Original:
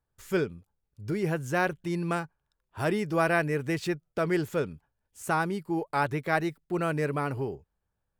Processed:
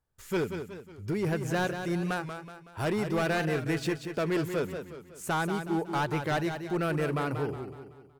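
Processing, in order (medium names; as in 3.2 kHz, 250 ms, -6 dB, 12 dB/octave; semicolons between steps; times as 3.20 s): hard clipper -24.5 dBFS, distortion -11 dB; feedback delay 185 ms, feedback 45%, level -8 dB; warped record 45 rpm, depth 100 cents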